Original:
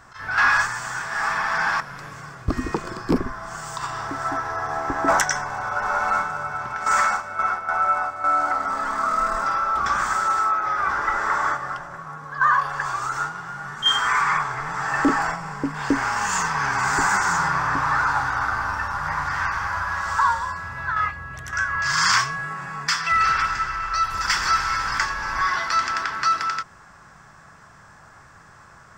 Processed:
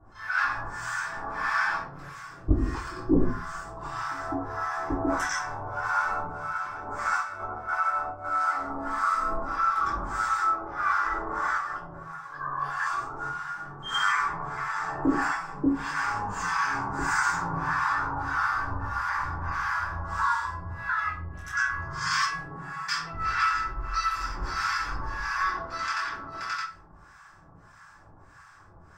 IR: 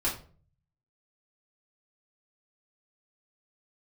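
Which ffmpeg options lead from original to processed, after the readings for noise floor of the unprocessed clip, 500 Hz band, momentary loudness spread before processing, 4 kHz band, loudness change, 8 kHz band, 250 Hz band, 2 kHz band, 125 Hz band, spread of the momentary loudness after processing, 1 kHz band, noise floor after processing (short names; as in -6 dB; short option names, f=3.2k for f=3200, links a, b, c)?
-48 dBFS, -5.0 dB, 10 LU, -10.0 dB, -6.5 dB, -10.5 dB, -2.0 dB, -6.5 dB, -2.0 dB, 9 LU, -6.5 dB, -52 dBFS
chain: -filter_complex "[0:a]alimiter=limit=-14dB:level=0:latency=1:release=27,acrossover=split=860[a][b];[a]aeval=exprs='val(0)*(1-1/2+1/2*cos(2*PI*1.6*n/s))':c=same[c];[b]aeval=exprs='val(0)*(1-1/2-1/2*cos(2*PI*1.6*n/s))':c=same[d];[c][d]amix=inputs=2:normalize=0,equalizer=f=360:t=o:w=0.77:g=2[e];[1:a]atrim=start_sample=2205[f];[e][f]afir=irnorm=-1:irlink=0,volume=-8.5dB"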